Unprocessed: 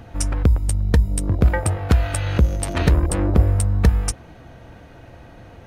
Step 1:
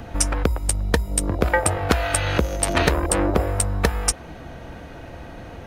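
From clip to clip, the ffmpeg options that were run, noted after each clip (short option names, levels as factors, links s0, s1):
-filter_complex "[0:a]equalizer=f=110:w=4:g=-7.5,acrossover=split=380|3500[s0][s1][s2];[s0]acompressor=threshold=0.0355:ratio=4[s3];[s3][s1][s2]amix=inputs=3:normalize=0,volume=2"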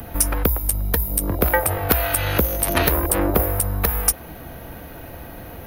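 -filter_complex "[0:a]acrossover=split=190|1200|3300[s0][s1][s2][s3];[s3]aexciter=amount=13:drive=8.8:freq=11000[s4];[s0][s1][s2][s4]amix=inputs=4:normalize=0,alimiter=level_in=1.19:limit=0.891:release=50:level=0:latency=1,volume=0.891"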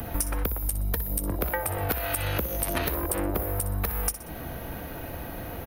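-af "aecho=1:1:61|122|183:0.2|0.0658|0.0217,acompressor=threshold=0.0562:ratio=6"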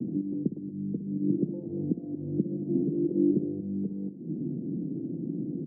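-filter_complex "[0:a]asplit=2[s0][s1];[s1]aeval=exprs='0.0473*(abs(mod(val(0)/0.0473+3,4)-2)-1)':c=same,volume=0.316[s2];[s0][s2]amix=inputs=2:normalize=0,asuperpass=centerf=230:order=8:qfactor=1.1,volume=2.51"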